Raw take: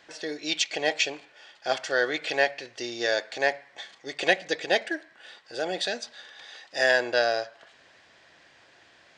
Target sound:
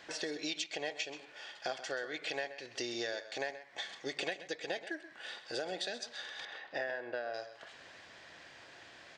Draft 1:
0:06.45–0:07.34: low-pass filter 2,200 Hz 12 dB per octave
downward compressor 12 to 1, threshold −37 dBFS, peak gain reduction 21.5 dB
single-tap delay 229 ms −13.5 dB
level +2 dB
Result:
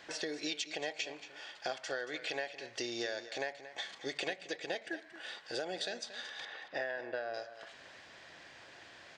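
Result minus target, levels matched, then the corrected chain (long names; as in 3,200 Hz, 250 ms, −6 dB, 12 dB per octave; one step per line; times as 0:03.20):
echo 99 ms late
0:06.45–0:07.34: low-pass filter 2,200 Hz 12 dB per octave
downward compressor 12 to 1, threshold −37 dBFS, peak gain reduction 21.5 dB
single-tap delay 130 ms −13.5 dB
level +2 dB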